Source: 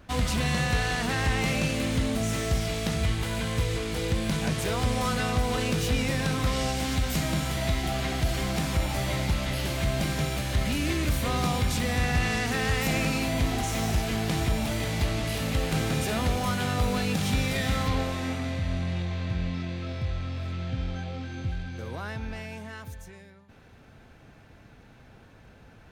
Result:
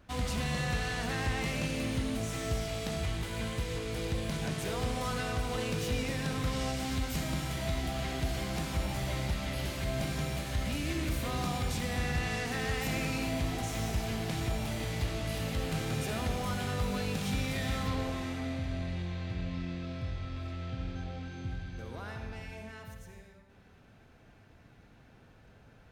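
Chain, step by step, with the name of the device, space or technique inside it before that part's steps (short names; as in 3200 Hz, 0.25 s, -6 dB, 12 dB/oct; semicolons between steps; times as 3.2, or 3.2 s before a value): saturated reverb return (on a send at -4 dB: reverb RT60 1.3 s, pre-delay 59 ms + soft clip -24 dBFS, distortion -12 dB); on the sum: gain -7.5 dB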